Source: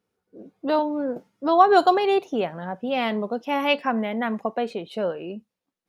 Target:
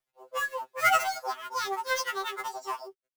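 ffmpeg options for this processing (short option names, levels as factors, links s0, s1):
-filter_complex "[0:a]acrossover=split=290[s0][s1];[s0]acompressor=threshold=0.00141:ratio=1.5[s2];[s2][s1]amix=inputs=2:normalize=0,acrusher=bits=11:mix=0:aa=0.000001,asetrate=82026,aresample=44100,acrossover=split=170|1000[s3][s4][s5];[s5]acrusher=bits=2:mode=log:mix=0:aa=0.000001[s6];[s3][s4][s6]amix=inputs=3:normalize=0,afftfilt=real='re*2.45*eq(mod(b,6),0)':imag='im*2.45*eq(mod(b,6),0)':win_size=2048:overlap=0.75,volume=0.631"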